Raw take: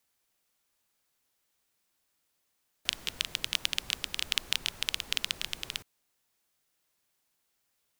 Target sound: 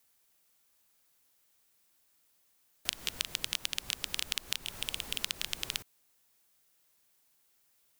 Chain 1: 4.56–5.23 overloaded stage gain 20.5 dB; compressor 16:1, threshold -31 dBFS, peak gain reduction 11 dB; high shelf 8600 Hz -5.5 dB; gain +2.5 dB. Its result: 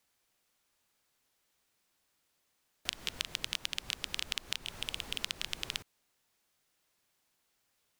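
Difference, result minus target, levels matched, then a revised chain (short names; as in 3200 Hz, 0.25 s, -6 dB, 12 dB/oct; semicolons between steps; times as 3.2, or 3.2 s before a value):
8000 Hz band -3.0 dB
4.56–5.23 overloaded stage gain 20.5 dB; compressor 16:1, threshold -31 dBFS, peak gain reduction 11 dB; high shelf 8600 Hz +6.5 dB; gain +2.5 dB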